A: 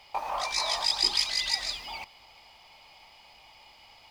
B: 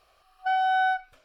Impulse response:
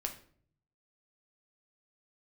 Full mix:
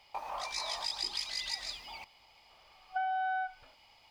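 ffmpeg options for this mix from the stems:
-filter_complex "[0:a]volume=-7.5dB[link_01];[1:a]lowpass=2400,adelay=2500,volume=-2dB[link_02];[link_01][link_02]amix=inputs=2:normalize=0,acompressor=threshold=-31dB:ratio=6"

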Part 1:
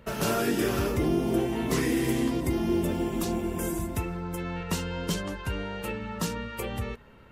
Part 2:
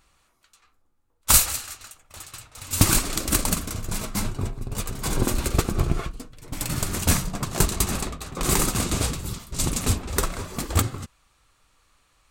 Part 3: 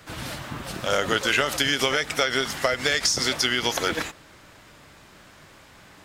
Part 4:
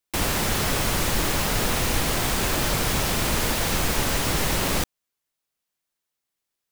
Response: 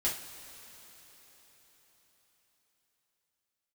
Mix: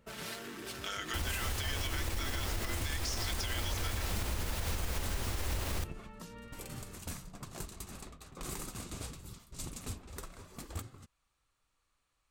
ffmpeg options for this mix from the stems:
-filter_complex "[0:a]acompressor=threshold=-30dB:ratio=6,volume=-13.5dB[link_01];[1:a]volume=-16.5dB[link_02];[2:a]highpass=1300,aecho=1:1:4.5:0.62,volume=-5dB[link_03];[3:a]lowshelf=frequency=110:width_type=q:width=3:gain=7,adelay=1000,volume=-4dB[link_04];[link_01][link_02]amix=inputs=2:normalize=0,alimiter=level_in=4.5dB:limit=-24dB:level=0:latency=1:release=438,volume=-4.5dB,volume=0dB[link_05];[link_03][link_04]amix=inputs=2:normalize=0,aeval=exprs='sgn(val(0))*max(abs(val(0))-0.00376,0)':channel_layout=same,acompressor=threshold=-31dB:ratio=3,volume=0dB[link_06];[link_05][link_06]amix=inputs=2:normalize=0,alimiter=level_in=1dB:limit=-24dB:level=0:latency=1:release=91,volume=-1dB"

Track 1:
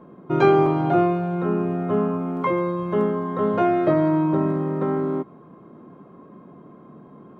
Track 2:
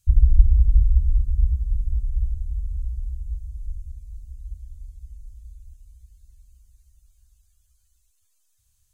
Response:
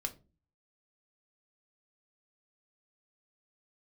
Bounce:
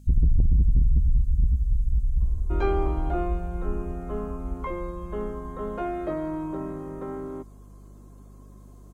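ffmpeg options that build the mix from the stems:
-filter_complex "[0:a]highpass=180,adelay=2200,volume=-10.5dB[link_01];[1:a]asoftclip=type=tanh:threshold=-16.5dB,volume=2dB[link_02];[link_01][link_02]amix=inputs=2:normalize=0,aeval=exprs='val(0)+0.00501*(sin(2*PI*50*n/s)+sin(2*PI*2*50*n/s)/2+sin(2*PI*3*50*n/s)/3+sin(2*PI*4*50*n/s)/4+sin(2*PI*5*50*n/s)/5)':channel_layout=same"

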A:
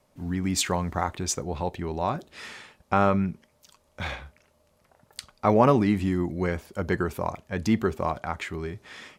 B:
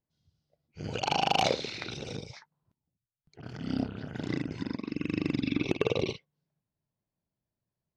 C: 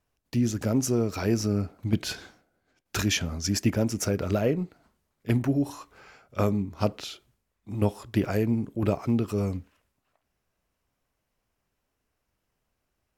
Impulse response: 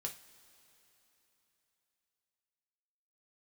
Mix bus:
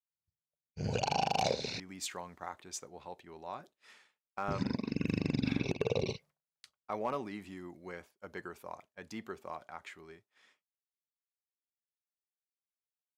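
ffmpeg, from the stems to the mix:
-filter_complex "[0:a]highpass=frequency=520:poles=1,asoftclip=type=hard:threshold=-11.5dB,adelay=1450,volume=-13.5dB[link_01];[1:a]equalizer=frequency=315:width_type=o:width=0.33:gain=-11,equalizer=frequency=1250:width_type=o:width=0.33:gain=-11,equalizer=frequency=2000:width_type=o:width=0.33:gain=-6,equalizer=frequency=3150:width_type=o:width=0.33:gain=-11,volume=3dB,asplit=3[link_02][link_03][link_04];[link_02]atrim=end=1.8,asetpts=PTS-STARTPTS,afade=type=out:start_time=1.796:duration=0.004:curve=hsin[link_05];[link_03]atrim=start=1.8:end=4.48,asetpts=PTS-STARTPTS,volume=0[link_06];[link_04]atrim=start=4.48,asetpts=PTS-STARTPTS,afade=type=in:duration=0.004:curve=hsin[link_07];[link_05][link_06][link_07]concat=n=3:v=0:a=1[link_08];[link_01][link_08]amix=inputs=2:normalize=0,agate=range=-33dB:threshold=-50dB:ratio=3:detection=peak,alimiter=limit=-19dB:level=0:latency=1:release=231"

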